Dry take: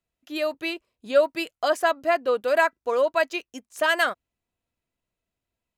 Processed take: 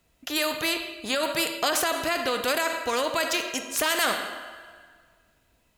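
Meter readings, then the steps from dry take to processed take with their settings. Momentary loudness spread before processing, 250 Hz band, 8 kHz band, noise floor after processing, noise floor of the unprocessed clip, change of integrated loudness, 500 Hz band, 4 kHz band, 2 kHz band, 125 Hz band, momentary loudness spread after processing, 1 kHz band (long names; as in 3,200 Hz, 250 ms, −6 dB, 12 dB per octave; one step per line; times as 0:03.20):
11 LU, +1.5 dB, +13.5 dB, −67 dBFS, below −85 dBFS, −1.5 dB, −6.0 dB, +6.5 dB, −1.5 dB, can't be measured, 6 LU, −2.0 dB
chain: coupled-rooms reverb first 0.67 s, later 1.7 s, from −17 dB, DRR 10 dB
brickwall limiter −17 dBFS, peak gain reduction 9.5 dB
every bin compressed towards the loudest bin 2 to 1
level +7 dB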